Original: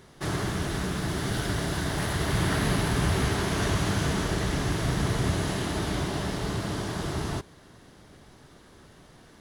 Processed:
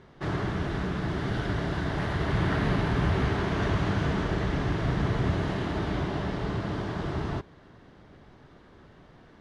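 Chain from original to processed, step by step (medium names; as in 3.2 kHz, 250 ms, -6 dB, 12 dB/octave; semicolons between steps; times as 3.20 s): Bessel low-pass 2.4 kHz, order 2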